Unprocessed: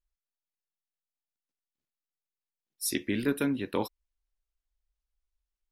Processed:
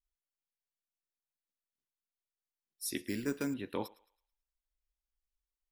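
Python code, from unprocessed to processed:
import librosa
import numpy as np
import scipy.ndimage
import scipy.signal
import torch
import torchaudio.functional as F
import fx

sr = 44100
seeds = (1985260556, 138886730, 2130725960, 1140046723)

y = fx.echo_thinned(x, sr, ms=109, feedback_pct=39, hz=700.0, wet_db=-19.5)
y = fx.resample_bad(y, sr, factor=6, down='filtered', up='hold', at=(3.08, 3.54))
y = F.gain(torch.from_numpy(y), -7.0).numpy()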